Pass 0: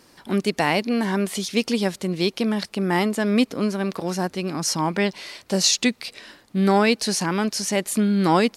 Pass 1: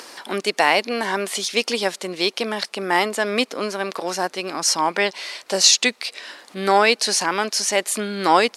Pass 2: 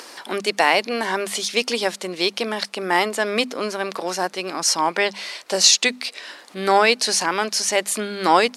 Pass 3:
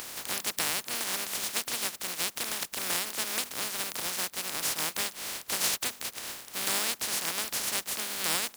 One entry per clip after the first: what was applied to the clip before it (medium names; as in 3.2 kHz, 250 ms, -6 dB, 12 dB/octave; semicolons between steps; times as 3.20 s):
low-pass 11 kHz 12 dB/octave; upward compressor, threshold -34 dBFS; high-pass 500 Hz 12 dB/octave; trim +5.5 dB
hum notches 50/100/150/200/250 Hz
spectral contrast reduction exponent 0.12; compression 2.5:1, threshold -33 dBFS, peak gain reduction 15 dB